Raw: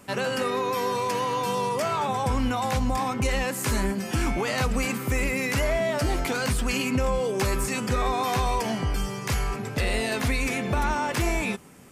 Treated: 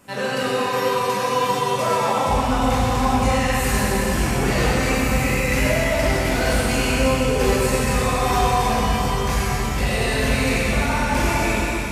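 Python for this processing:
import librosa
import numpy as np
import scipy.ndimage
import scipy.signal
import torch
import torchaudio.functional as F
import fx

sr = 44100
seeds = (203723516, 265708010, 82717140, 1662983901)

y = fx.rev_plate(x, sr, seeds[0], rt60_s=4.4, hf_ratio=0.95, predelay_ms=0, drr_db=-9.0)
y = F.gain(torch.from_numpy(y), -3.0).numpy()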